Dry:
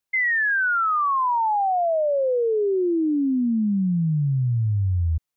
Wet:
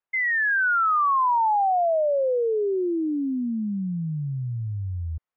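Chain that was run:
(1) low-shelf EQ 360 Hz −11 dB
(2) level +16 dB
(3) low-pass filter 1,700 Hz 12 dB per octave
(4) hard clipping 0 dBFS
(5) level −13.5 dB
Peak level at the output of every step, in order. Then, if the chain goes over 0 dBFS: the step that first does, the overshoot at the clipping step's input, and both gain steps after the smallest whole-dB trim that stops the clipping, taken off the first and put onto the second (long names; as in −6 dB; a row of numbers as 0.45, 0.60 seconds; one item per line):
−18.5, −2.5, −4.0, −4.0, −17.5 dBFS
no step passes full scale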